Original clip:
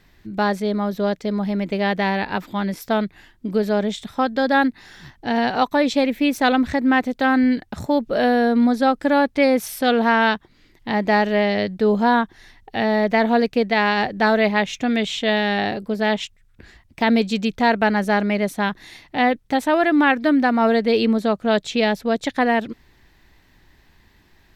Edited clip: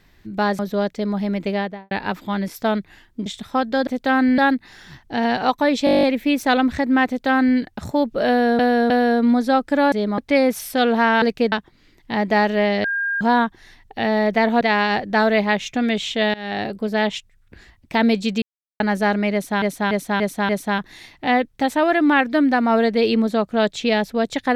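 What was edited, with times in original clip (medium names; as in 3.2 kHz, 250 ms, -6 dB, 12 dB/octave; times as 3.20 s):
0.59–0.85 s: move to 9.25 s
1.73–2.17 s: studio fade out
3.52–3.90 s: delete
5.98 s: stutter 0.02 s, 10 plays
7.02–7.53 s: copy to 4.51 s
8.23–8.54 s: loop, 3 plays
11.61–11.98 s: bleep 1.61 kHz -19.5 dBFS
13.38–13.68 s: move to 10.29 s
15.41–15.74 s: fade in, from -22 dB
17.49–17.87 s: mute
18.40–18.69 s: loop, 5 plays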